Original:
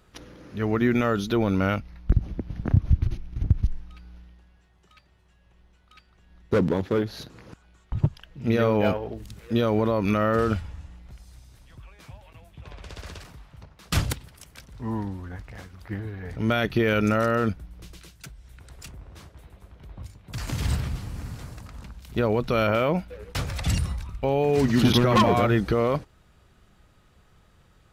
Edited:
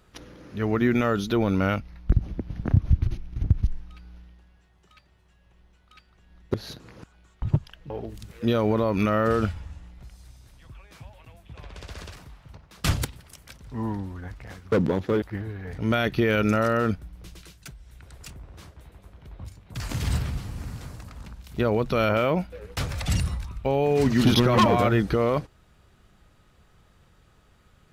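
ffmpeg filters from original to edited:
-filter_complex "[0:a]asplit=5[s0][s1][s2][s3][s4];[s0]atrim=end=6.542[s5];[s1]atrim=start=7.038:end=8.402[s6];[s2]atrim=start=8.978:end=15.802[s7];[s3]atrim=start=6.538:end=7.042[s8];[s4]atrim=start=15.798[s9];[s5][s6]acrossfade=d=0.004:c1=hsin:c2=hsin[s10];[s10][s7]acrossfade=d=0.004:c1=hsin:c2=hsin[s11];[s11][s8]acrossfade=d=0.004:c1=hsin:c2=hsin[s12];[s12][s9]acrossfade=d=0.004:c1=hsin:c2=hsin"

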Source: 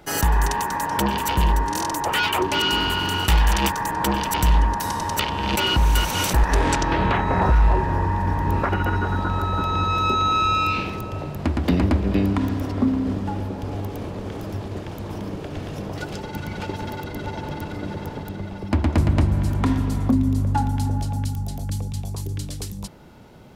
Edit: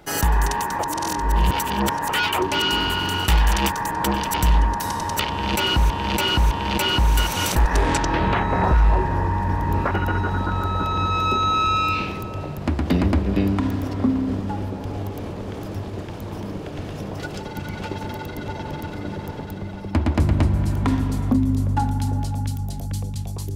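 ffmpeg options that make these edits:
-filter_complex "[0:a]asplit=5[s0][s1][s2][s3][s4];[s0]atrim=end=0.792[s5];[s1]atrim=start=0.788:end=2.092,asetpts=PTS-STARTPTS,areverse[s6];[s2]atrim=start=2.088:end=5.902[s7];[s3]atrim=start=5.288:end=5.902[s8];[s4]atrim=start=5.288[s9];[s5][s6]acrossfade=d=0.004:c1=hsin:c2=hsin[s10];[s10][s7]acrossfade=d=0.004:c1=hsin:c2=hsin[s11];[s11][s8]acrossfade=d=0.004:c1=hsin:c2=hsin[s12];[s12][s9]acrossfade=d=0.004:c1=hsin:c2=hsin"

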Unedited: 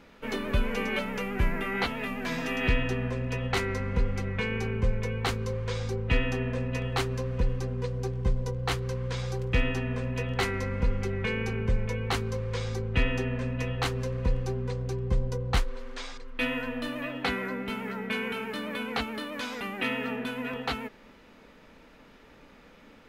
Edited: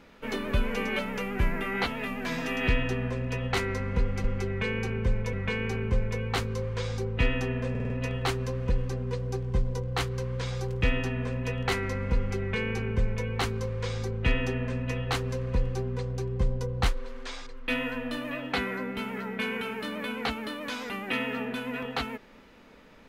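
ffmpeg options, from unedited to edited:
-filter_complex "[0:a]asplit=7[s0][s1][s2][s3][s4][s5][s6];[s0]atrim=end=4.242[s7];[s1]atrim=start=10.868:end=11.962[s8];[s2]atrim=start=4.238:end=6.662[s9];[s3]atrim=start=6.608:end=6.662[s10];[s4]atrim=start=6.608:end=6.662[s11];[s5]atrim=start=6.608:end=6.662[s12];[s6]atrim=start=6.608[s13];[s7][s8]acrossfade=d=0.004:c1=hsin:c2=hsin[s14];[s14][s9]acrossfade=d=0.004:c1=hsin:c2=hsin[s15];[s15][s10]acrossfade=d=0.004:c1=hsin:c2=hsin[s16];[s16][s11]acrossfade=d=0.004:c1=hsin:c2=hsin[s17];[s17][s12]acrossfade=d=0.004:c1=hsin:c2=hsin[s18];[s18][s13]acrossfade=d=0.004:c1=hsin:c2=hsin"

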